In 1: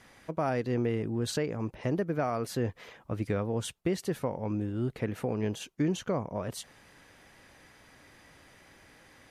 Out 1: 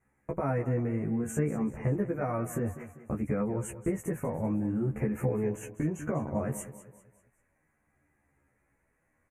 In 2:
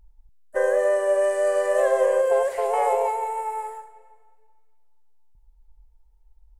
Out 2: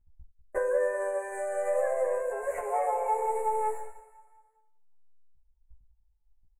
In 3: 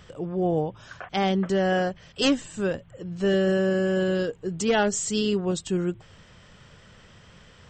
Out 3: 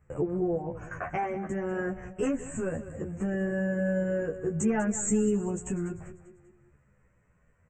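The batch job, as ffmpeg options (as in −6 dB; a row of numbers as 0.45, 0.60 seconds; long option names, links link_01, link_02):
-filter_complex "[0:a]agate=range=-22dB:threshold=-45dB:ratio=16:detection=peak,lowshelf=frequency=200:gain=7.5,asplit=2[link_01][link_02];[link_02]alimiter=limit=-18dB:level=0:latency=1:release=13,volume=0dB[link_03];[link_01][link_03]amix=inputs=2:normalize=0,acompressor=threshold=-24dB:ratio=6,asuperstop=centerf=4100:order=8:qfactor=0.93,asplit=2[link_04][link_05];[link_05]adelay=14,volume=-6dB[link_06];[link_04][link_06]amix=inputs=2:normalize=0,asplit=2[link_07][link_08];[link_08]aecho=0:1:196|392|588|784:0.2|0.0838|0.0352|0.0148[link_09];[link_07][link_09]amix=inputs=2:normalize=0,asplit=2[link_10][link_11];[link_11]adelay=11.1,afreqshift=-0.61[link_12];[link_10][link_12]amix=inputs=2:normalize=1"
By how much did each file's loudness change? +0.5, −7.5, −5.0 LU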